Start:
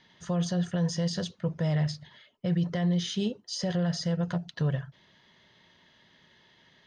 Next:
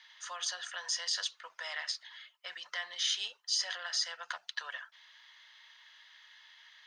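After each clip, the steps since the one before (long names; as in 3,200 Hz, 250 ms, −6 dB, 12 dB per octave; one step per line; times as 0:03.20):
high-pass filter 1,100 Hz 24 dB per octave
level +4.5 dB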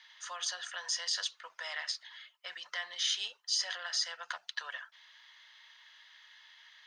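no processing that can be heard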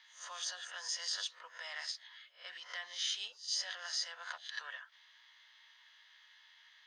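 peak hold with a rise ahead of every peak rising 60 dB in 0.33 s
level −6 dB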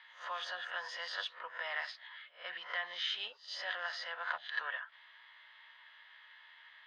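high-frequency loss of the air 450 metres
level +10.5 dB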